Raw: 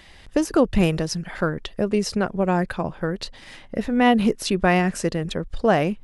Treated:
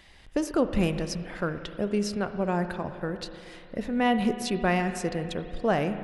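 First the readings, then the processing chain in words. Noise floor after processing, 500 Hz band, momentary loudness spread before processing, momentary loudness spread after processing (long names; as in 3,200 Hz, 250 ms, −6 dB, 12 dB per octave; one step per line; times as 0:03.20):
−50 dBFS, −6.0 dB, 10 LU, 9 LU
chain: spring reverb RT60 2.7 s, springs 34/58 ms, chirp 60 ms, DRR 9 dB
level −6.5 dB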